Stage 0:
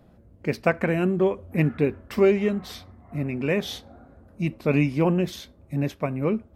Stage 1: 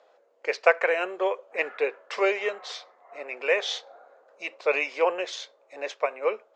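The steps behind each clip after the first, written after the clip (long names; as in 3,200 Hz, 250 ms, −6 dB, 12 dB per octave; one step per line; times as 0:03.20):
Chebyshev band-pass filter 470–7,100 Hz, order 4
dynamic equaliser 2,000 Hz, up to +3 dB, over −41 dBFS, Q 1
level +3 dB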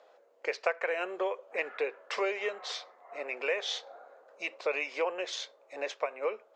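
downward compressor 2.5 to 1, threshold −31 dBFS, peak gain reduction 12.5 dB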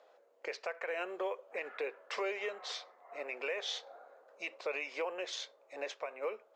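brickwall limiter −24 dBFS, peak gain reduction 8.5 dB
floating-point word with a short mantissa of 6 bits
level −3.5 dB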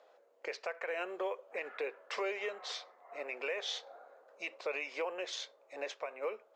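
no processing that can be heard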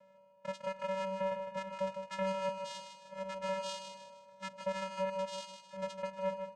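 channel vocoder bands 4, square 191 Hz
on a send: repeating echo 155 ms, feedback 37%, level −7.5 dB
on the sum: level +1.5 dB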